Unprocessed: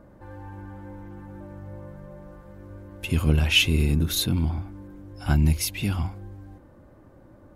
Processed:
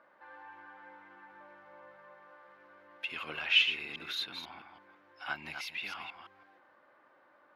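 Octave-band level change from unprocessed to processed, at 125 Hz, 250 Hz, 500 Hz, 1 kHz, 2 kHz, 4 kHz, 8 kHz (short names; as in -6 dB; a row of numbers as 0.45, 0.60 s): -38.5, -27.0, -16.0, -5.0, -3.5, -5.5, -23.0 dB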